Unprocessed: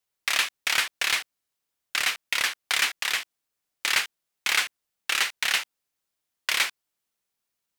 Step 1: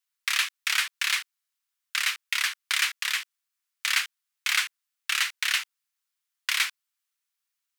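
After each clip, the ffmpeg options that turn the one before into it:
-af "highpass=f=1.1k:w=0.5412,highpass=f=1.1k:w=1.3066,volume=-1dB"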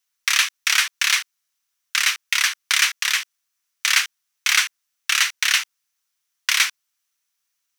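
-af "equalizer=f=5.9k:w=5.7:g=7,volume=6.5dB"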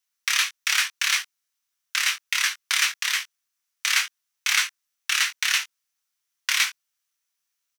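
-filter_complex "[0:a]asplit=2[a][b];[b]adelay=21,volume=-7dB[c];[a][c]amix=inputs=2:normalize=0,volume=-4.5dB"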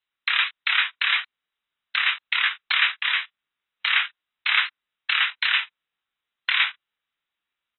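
-af "volume=2dB" -ar 24000 -c:a aac -b:a 16k

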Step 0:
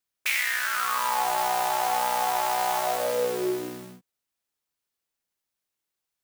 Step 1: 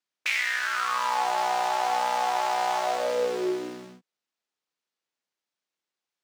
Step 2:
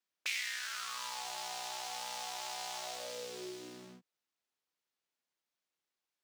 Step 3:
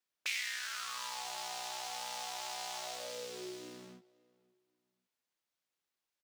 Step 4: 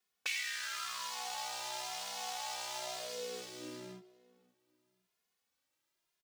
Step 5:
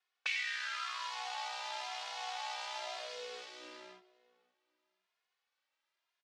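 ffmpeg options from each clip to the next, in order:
-filter_complex "[0:a]acrossover=split=160 7100:gain=0.112 1 0.112[a][b][c];[a][b][c]amix=inputs=3:normalize=0"
-filter_complex "[0:a]acrossover=split=120|3000[a][b][c];[b]acompressor=threshold=-47dB:ratio=3[d];[a][d][c]amix=inputs=3:normalize=0,volume=-3dB"
-filter_complex "[0:a]asplit=2[a][b];[b]adelay=533,lowpass=f=2.2k:p=1,volume=-24dB,asplit=2[c][d];[d]adelay=533,lowpass=f=2.2k:p=1,volume=0.34[e];[a][c][e]amix=inputs=3:normalize=0"
-filter_complex "[0:a]asplit=2[a][b];[b]acompressor=threshold=-50dB:ratio=6,volume=2.5dB[c];[a][c]amix=inputs=2:normalize=0,asplit=2[d][e];[e]adelay=2.4,afreqshift=0.96[f];[d][f]amix=inputs=2:normalize=1,volume=1dB"
-filter_complex "[0:a]asplit=2[a][b];[b]aeval=exprs='clip(val(0),-1,0.0237)':c=same,volume=-8dB[c];[a][c]amix=inputs=2:normalize=0,highpass=700,lowpass=3.7k"

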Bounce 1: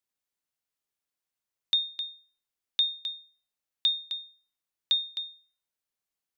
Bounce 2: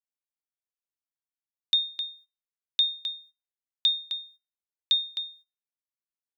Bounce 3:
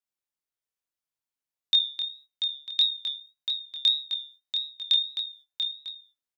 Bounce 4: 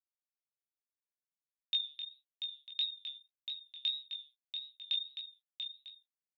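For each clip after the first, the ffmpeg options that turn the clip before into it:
-af "agate=range=-18dB:threshold=-54dB:ratio=16:detection=peak,volume=2dB"
-af "flanger=delay=19:depth=7.5:speed=1.7,aecho=1:1:688:0.447,volume=4.5dB"
-filter_complex "[0:a]aeval=exprs='sgn(val(0))*max(abs(val(0))-0.00168,0)':c=same,bandpass=f=2.7k:t=q:w=5.5:csg=0,asplit=2[a][b];[b]adelay=16,volume=-8dB[c];[a][c]amix=inputs=2:normalize=0"

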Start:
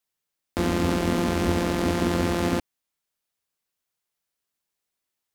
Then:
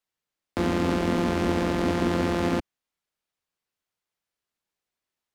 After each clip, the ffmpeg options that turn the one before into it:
-filter_complex "[0:a]lowpass=f=4k:p=1,acrossover=split=160|2000[a][b][c];[a]alimiter=level_in=5dB:limit=-24dB:level=0:latency=1,volume=-5dB[d];[d][b][c]amix=inputs=3:normalize=0"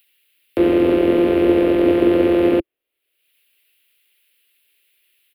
-filter_complex "[0:a]firequalizer=gain_entry='entry(140,0);entry(200,-5);entry(340,14);entry(570,11);entry(820,-2);entry(1700,1);entry(2700,7);entry(6100,-21);entry(11000,4)':delay=0.05:min_phase=1,acrossover=split=200|1000|2000[a][b][c][d];[d]acompressor=mode=upward:threshold=-42dB:ratio=2.5[e];[a][b][c][e]amix=inputs=4:normalize=0"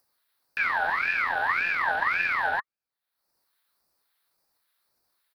-af "aeval=exprs='val(0)*sin(2*PI*1600*n/s+1600*0.3/1.8*sin(2*PI*1.8*n/s))':c=same,volume=-8.5dB"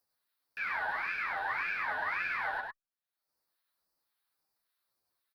-filter_complex "[0:a]aecho=1:1:101:0.631,asplit=2[a][b];[b]adelay=9.2,afreqshift=-0.97[c];[a][c]amix=inputs=2:normalize=1,volume=-7dB"

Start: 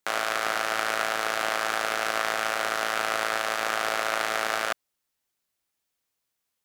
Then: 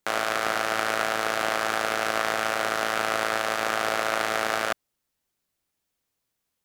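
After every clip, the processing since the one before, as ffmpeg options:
-af "lowshelf=f=460:g=7.5"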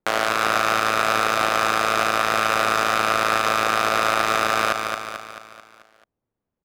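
-filter_complex "[0:a]adynamicsmooth=sensitivity=7.5:basefreq=860,asplit=2[a][b];[b]aecho=0:1:219|438|657|876|1095|1314:0.447|0.228|0.116|0.0593|0.0302|0.0154[c];[a][c]amix=inputs=2:normalize=0,alimiter=limit=-11dB:level=0:latency=1:release=66,volume=6.5dB"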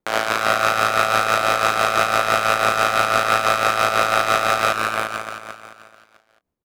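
-filter_complex "[0:a]asplit=2[a][b];[b]adelay=26,volume=-13dB[c];[a][c]amix=inputs=2:normalize=0,aecho=1:1:347:0.562,tremolo=f=6:d=0.5,volume=2.5dB"

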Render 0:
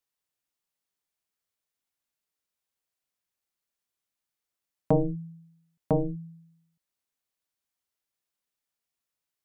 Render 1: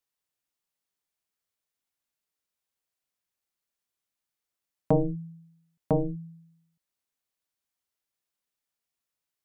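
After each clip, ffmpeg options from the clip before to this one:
-af anull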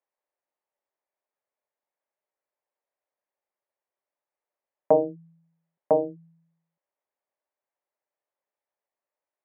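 -af "highpass=380,equalizer=f=390:t=q:w=4:g=3,equalizer=f=580:t=q:w=4:g=10,equalizer=f=870:t=q:w=4:g=5,equalizer=f=1.4k:t=q:w=4:g=-5,lowpass=f=2k:w=0.5412,lowpass=f=2k:w=1.3066,volume=2dB"

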